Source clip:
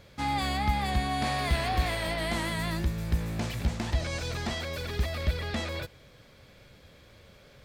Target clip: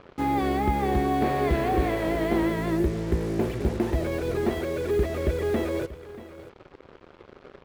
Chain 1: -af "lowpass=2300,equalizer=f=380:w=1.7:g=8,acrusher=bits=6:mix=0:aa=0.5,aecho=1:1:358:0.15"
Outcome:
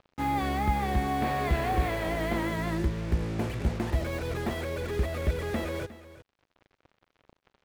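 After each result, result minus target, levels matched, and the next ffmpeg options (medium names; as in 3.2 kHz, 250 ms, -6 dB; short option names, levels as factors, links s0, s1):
echo 276 ms early; 500 Hz band -3.5 dB
-af "lowpass=2300,equalizer=f=380:w=1.7:g=8,acrusher=bits=6:mix=0:aa=0.5,aecho=1:1:634:0.15"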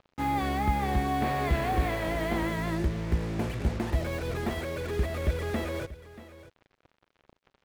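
500 Hz band -3.5 dB
-af "lowpass=2300,equalizer=f=380:w=1.7:g=19.5,acrusher=bits=6:mix=0:aa=0.5,aecho=1:1:634:0.15"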